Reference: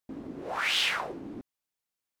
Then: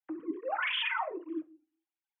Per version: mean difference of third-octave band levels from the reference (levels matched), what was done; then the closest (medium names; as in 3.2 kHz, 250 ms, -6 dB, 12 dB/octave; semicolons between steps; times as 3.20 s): 14.0 dB: formants replaced by sine waves; simulated room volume 200 m³, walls furnished, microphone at 0.53 m; cancelling through-zero flanger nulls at 1.2 Hz, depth 6.1 ms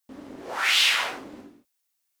5.5 dB: tilt EQ +2.5 dB/octave; gated-style reverb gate 250 ms falling, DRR -1 dB; loudspeaker Doppler distortion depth 0.51 ms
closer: second